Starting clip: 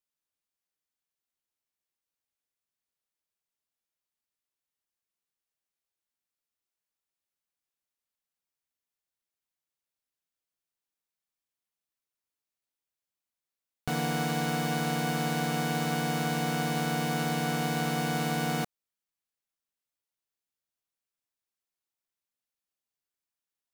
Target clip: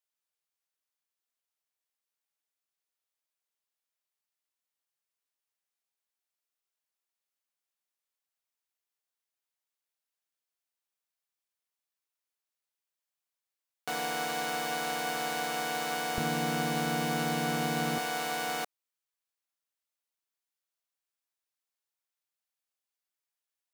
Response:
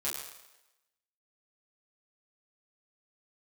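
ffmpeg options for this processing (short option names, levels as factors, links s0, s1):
-af "asetnsamples=n=441:p=0,asendcmd='16.18 highpass f 170;17.98 highpass f 500',highpass=470"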